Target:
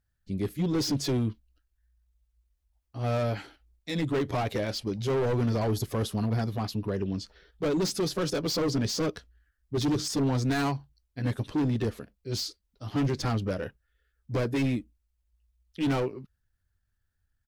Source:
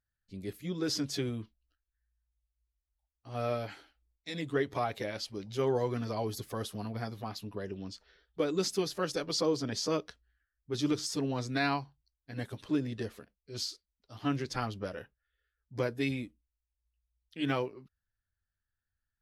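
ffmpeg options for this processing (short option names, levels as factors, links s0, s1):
-af "volume=44.7,asoftclip=hard,volume=0.0224,lowshelf=f=420:g=7.5,atempo=1.1,volume=1.78"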